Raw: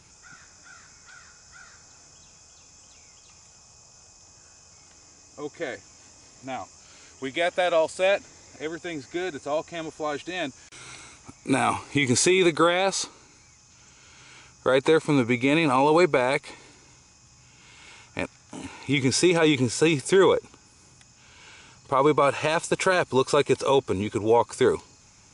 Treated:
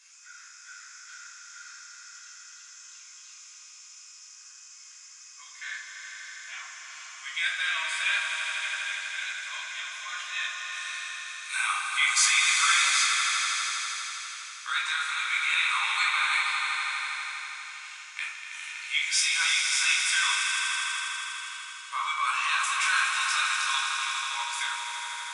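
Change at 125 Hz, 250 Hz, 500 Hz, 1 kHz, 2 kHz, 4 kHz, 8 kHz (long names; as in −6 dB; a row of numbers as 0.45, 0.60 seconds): below −40 dB, below −40 dB, below −35 dB, −3.5 dB, +5.0 dB, +5.5 dB, +4.5 dB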